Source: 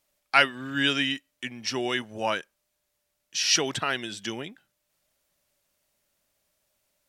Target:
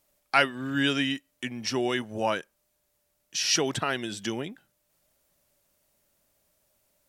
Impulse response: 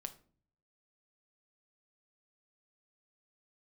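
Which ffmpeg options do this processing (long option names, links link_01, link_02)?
-filter_complex "[0:a]equalizer=frequency=3000:width=0.38:gain=-6,asplit=2[link_01][link_02];[link_02]acompressor=threshold=-37dB:ratio=6,volume=-2.5dB[link_03];[link_01][link_03]amix=inputs=2:normalize=0,volume=1dB"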